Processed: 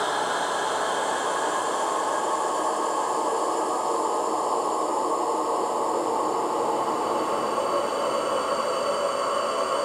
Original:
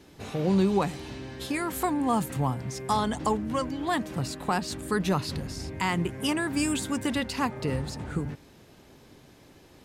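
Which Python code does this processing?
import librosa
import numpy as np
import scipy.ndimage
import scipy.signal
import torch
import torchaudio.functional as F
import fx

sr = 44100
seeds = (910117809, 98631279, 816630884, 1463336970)

y = scipy.signal.sosfilt(scipy.signal.butter(4, 440.0, 'highpass', fs=sr, output='sos'), x)
y = fx.whisperise(y, sr, seeds[0])
y = fx.paulstretch(y, sr, seeds[1], factor=21.0, window_s=0.5, from_s=3.1)
y = fx.rider(y, sr, range_db=10, speed_s=0.5)
y = F.gain(torch.from_numpy(y), 6.0).numpy()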